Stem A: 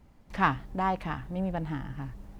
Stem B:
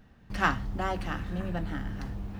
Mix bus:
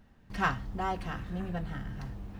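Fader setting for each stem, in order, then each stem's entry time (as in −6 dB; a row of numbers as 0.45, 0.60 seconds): −9.0, −4.5 decibels; 0.00, 0.00 seconds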